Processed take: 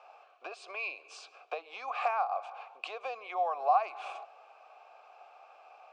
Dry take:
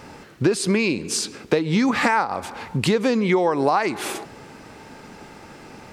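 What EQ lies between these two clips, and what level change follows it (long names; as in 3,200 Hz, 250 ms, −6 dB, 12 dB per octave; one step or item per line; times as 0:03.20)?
formant filter a
high-pass filter 570 Hz 24 dB per octave
low-pass filter 8,300 Hz 24 dB per octave
0.0 dB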